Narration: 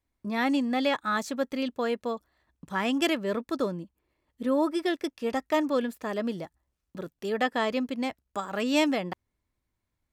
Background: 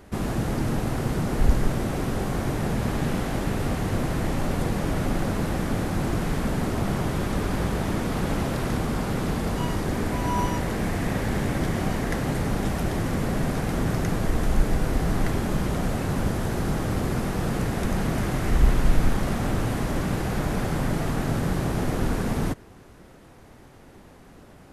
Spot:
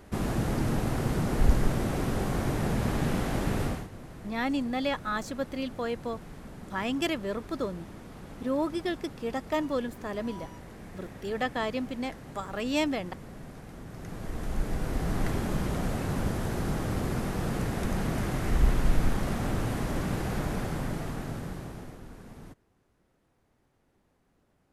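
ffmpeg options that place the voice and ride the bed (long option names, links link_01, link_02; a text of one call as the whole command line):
ffmpeg -i stem1.wav -i stem2.wav -filter_complex "[0:a]adelay=4000,volume=-3.5dB[link_01];[1:a]volume=12dB,afade=type=out:start_time=3.62:duration=0.26:silence=0.149624,afade=type=in:start_time=13.9:duration=1.39:silence=0.188365,afade=type=out:start_time=20.34:duration=1.67:silence=0.141254[link_02];[link_01][link_02]amix=inputs=2:normalize=0" out.wav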